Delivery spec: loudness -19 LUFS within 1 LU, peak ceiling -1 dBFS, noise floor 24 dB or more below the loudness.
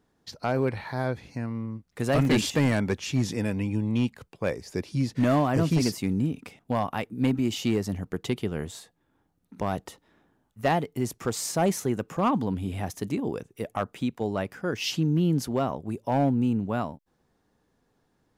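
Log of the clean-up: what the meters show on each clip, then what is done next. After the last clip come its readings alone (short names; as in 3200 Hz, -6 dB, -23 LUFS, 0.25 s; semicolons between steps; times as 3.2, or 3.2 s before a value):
clipped 0.7%; flat tops at -16.5 dBFS; dropouts 1; longest dropout 1.9 ms; loudness -28.0 LUFS; peak -16.5 dBFS; loudness target -19.0 LUFS
-> clip repair -16.5 dBFS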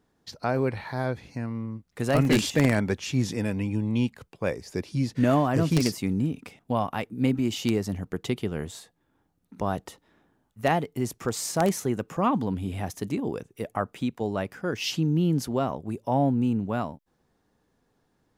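clipped 0.0%; dropouts 1; longest dropout 1.9 ms
-> interpolate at 2.25, 1.9 ms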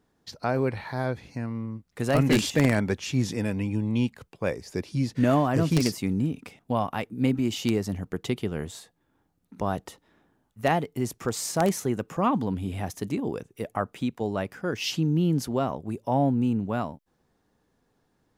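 dropouts 0; loudness -27.5 LUFS; peak -7.5 dBFS; loudness target -19.0 LUFS
-> gain +8.5 dB; limiter -1 dBFS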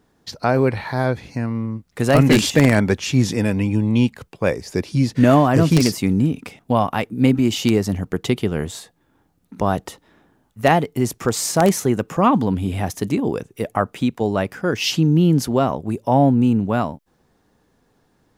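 loudness -19.0 LUFS; peak -1.0 dBFS; noise floor -63 dBFS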